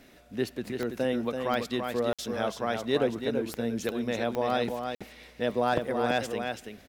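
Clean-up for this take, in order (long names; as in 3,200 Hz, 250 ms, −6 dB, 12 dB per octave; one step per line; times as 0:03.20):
clipped peaks rebuilt −15 dBFS
click removal
repair the gap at 0:02.13/0:04.95, 56 ms
echo removal 333 ms −6 dB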